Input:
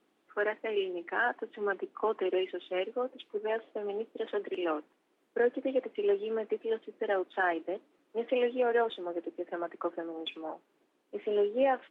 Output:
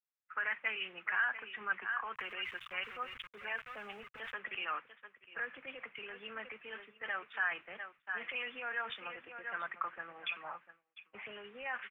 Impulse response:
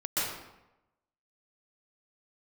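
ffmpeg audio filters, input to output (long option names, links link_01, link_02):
-filter_complex "[0:a]aecho=1:1:696:0.178,asplit=3[link_01][link_02][link_03];[link_01]afade=type=out:start_time=2.14:duration=0.02[link_04];[link_02]aeval=exprs='val(0)*gte(abs(val(0)),0.00398)':channel_layout=same,afade=type=in:start_time=2.14:duration=0.02,afade=type=out:start_time=4.37:duration=0.02[link_05];[link_03]afade=type=in:start_time=4.37:duration=0.02[link_06];[link_04][link_05][link_06]amix=inputs=3:normalize=0,alimiter=level_in=5dB:limit=-24dB:level=0:latency=1:release=23,volume=-5dB,firequalizer=gain_entry='entry(130,0);entry(300,-28);entry(470,-20);entry(1200,2);entry(2500,3);entry(4300,-22)':delay=0.05:min_phase=1,agate=range=-33dB:threshold=-58dB:ratio=3:detection=peak,adynamicequalizer=threshold=0.00251:dfrequency=1600:dqfactor=0.7:tfrequency=1600:tqfactor=0.7:attack=5:release=100:ratio=0.375:range=2.5:mode=boostabove:tftype=highshelf,volume=4dB"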